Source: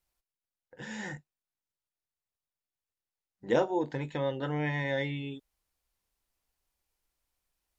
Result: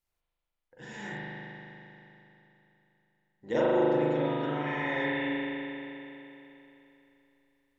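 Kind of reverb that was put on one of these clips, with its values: spring tank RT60 3.3 s, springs 39 ms, chirp 30 ms, DRR -8 dB; trim -5.5 dB

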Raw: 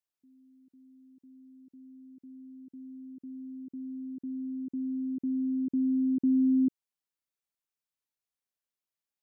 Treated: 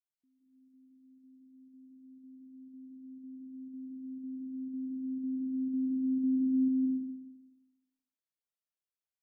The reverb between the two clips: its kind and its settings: algorithmic reverb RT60 1.2 s, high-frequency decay 0.7×, pre-delay 115 ms, DRR -4.5 dB; trim -13.5 dB

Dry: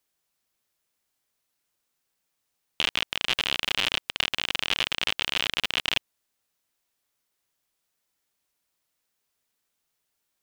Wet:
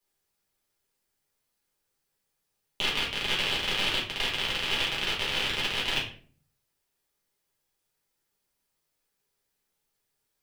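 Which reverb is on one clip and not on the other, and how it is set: simulated room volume 38 m³, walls mixed, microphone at 1.3 m; trim -7.5 dB

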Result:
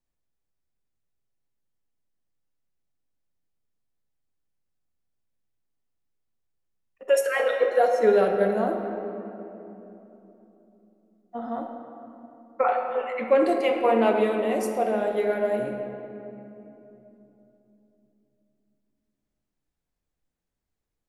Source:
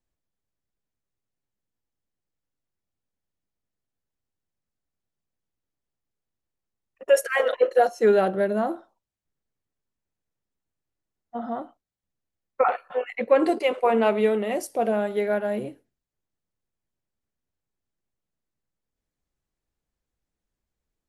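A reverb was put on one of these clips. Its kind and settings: simulated room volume 170 m³, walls hard, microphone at 0.32 m; trim -2.5 dB

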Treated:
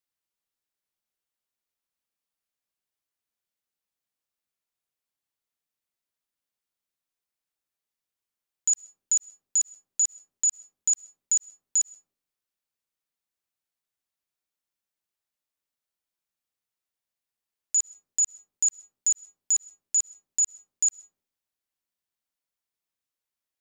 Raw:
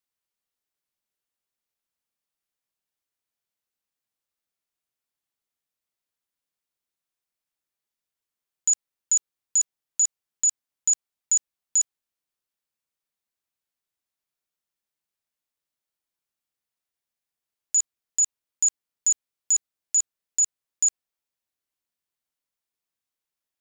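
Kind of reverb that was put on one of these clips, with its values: algorithmic reverb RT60 0.61 s, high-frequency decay 0.3×, pre-delay 85 ms, DRR 18.5 dB; trim -2 dB

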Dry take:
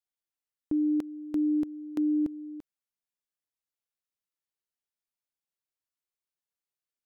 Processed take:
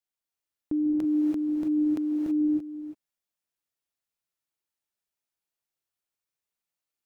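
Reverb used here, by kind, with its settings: gated-style reverb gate 350 ms rising, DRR -0.5 dB

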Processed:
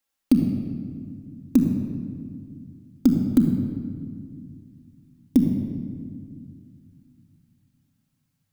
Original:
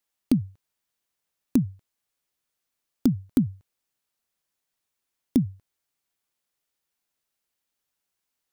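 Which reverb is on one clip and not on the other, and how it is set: simulated room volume 3800 m³, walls mixed, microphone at 2.2 m

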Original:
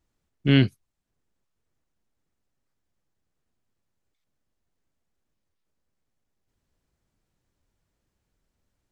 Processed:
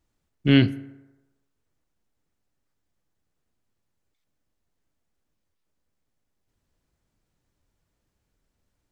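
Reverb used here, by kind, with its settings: FDN reverb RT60 1.1 s, low-frequency decay 0.75×, high-frequency decay 0.5×, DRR 15 dB; trim +1 dB

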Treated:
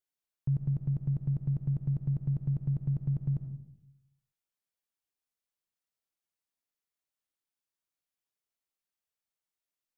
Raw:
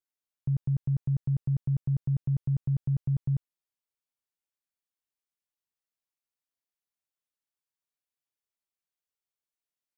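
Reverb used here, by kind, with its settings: algorithmic reverb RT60 0.81 s, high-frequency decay 0.3×, pre-delay 25 ms, DRR 8 dB; trim -1 dB

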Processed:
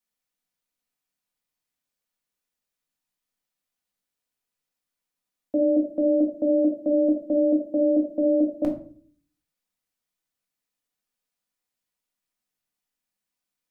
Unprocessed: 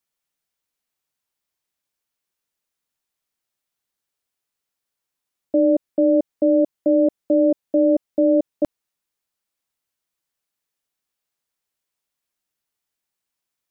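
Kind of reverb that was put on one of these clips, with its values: simulated room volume 400 m³, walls furnished, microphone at 1.9 m; trim -5.5 dB

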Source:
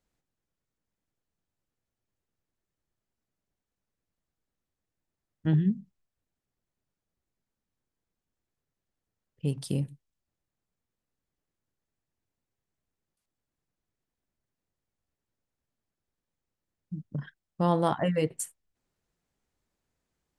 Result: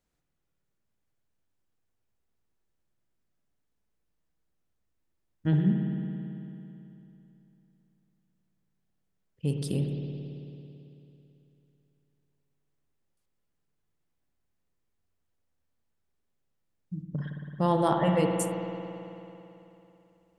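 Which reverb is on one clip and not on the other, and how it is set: spring tank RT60 3.1 s, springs 55 ms, chirp 55 ms, DRR 2 dB

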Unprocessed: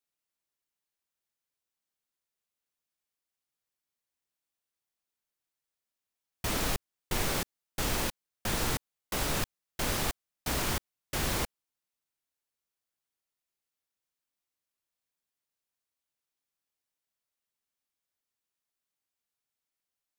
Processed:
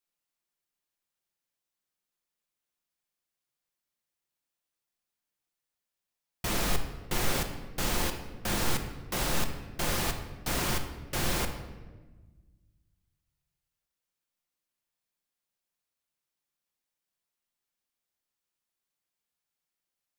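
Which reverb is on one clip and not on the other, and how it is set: simulated room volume 1000 m³, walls mixed, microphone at 0.87 m

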